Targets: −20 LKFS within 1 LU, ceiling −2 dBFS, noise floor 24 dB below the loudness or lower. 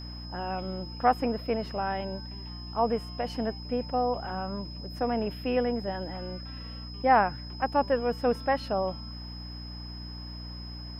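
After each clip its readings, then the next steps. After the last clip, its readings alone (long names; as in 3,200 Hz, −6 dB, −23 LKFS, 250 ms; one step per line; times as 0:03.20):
mains hum 60 Hz; hum harmonics up to 300 Hz; level of the hum −38 dBFS; interfering tone 5,100 Hz; level of the tone −44 dBFS; integrated loudness −30.5 LKFS; sample peak −9.0 dBFS; target loudness −20.0 LKFS
→ hum removal 60 Hz, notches 5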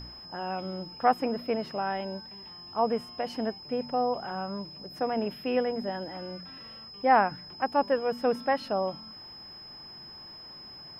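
mains hum none found; interfering tone 5,100 Hz; level of the tone −44 dBFS
→ notch filter 5,100 Hz, Q 30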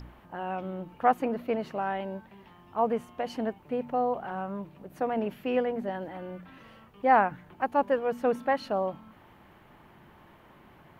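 interfering tone none found; integrated loudness −30.0 LKFS; sample peak −9.5 dBFS; target loudness −20.0 LKFS
→ level +10 dB
brickwall limiter −2 dBFS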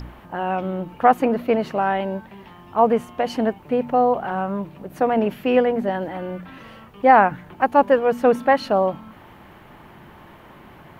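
integrated loudness −20.5 LKFS; sample peak −2.0 dBFS; background noise floor −46 dBFS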